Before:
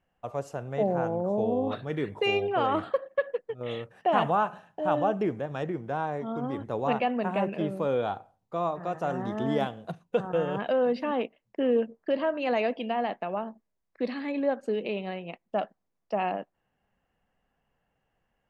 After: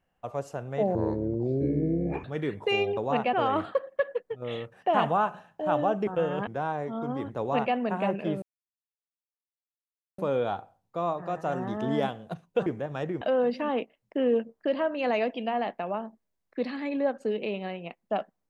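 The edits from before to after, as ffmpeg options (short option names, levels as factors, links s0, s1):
-filter_complex "[0:a]asplit=10[s0][s1][s2][s3][s4][s5][s6][s7][s8][s9];[s0]atrim=end=0.954[s10];[s1]atrim=start=0.95:end=1.79,asetpts=PTS-STARTPTS,asetrate=28665,aresample=44100[s11];[s2]atrim=start=1.786:end=2.522[s12];[s3]atrim=start=6.728:end=7.092[s13];[s4]atrim=start=2.518:end=5.262[s14];[s5]atrim=start=10.238:end=10.642[s15];[s6]atrim=start=5.808:end=7.76,asetpts=PTS-STARTPTS,afade=t=out:st=1.948:d=0.004:c=hsin,apad=pad_dur=1.76[s16];[s7]atrim=start=7.76:end=10.242,asetpts=PTS-STARTPTS,afade=t=in:d=0.004:c=hsin[s17];[s8]atrim=start=5.258:end=5.812[s18];[s9]atrim=start=10.638[s19];[s10][s11]acrossfade=d=0.004:c1=hsin:c2=hsin[s20];[s20][s12]acrossfade=d=0.004:c1=hsin:c2=hsin[s21];[s21][s13]acrossfade=d=0.004:c1=hsin:c2=hsin[s22];[s22][s14]acrossfade=d=0.004:c1=hsin:c2=hsin[s23];[s23][s15]acrossfade=d=0.004:c1=hsin:c2=hsin[s24];[s16][s17]concat=n=2:v=0:a=1[s25];[s24][s25]acrossfade=d=0.004:c1=hsin:c2=hsin[s26];[s26][s18]acrossfade=d=0.004:c1=hsin:c2=hsin[s27];[s27][s19]acrossfade=d=0.004:c1=hsin:c2=hsin"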